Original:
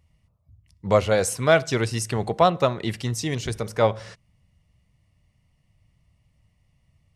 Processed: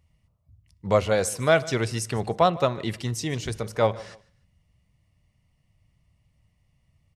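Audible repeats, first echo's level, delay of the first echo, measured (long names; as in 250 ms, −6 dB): 2, −21.0 dB, 150 ms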